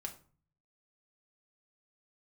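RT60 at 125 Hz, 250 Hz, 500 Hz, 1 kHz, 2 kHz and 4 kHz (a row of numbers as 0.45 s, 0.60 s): 0.95 s, 0.65 s, 0.40 s, 0.40 s, 0.30 s, 0.30 s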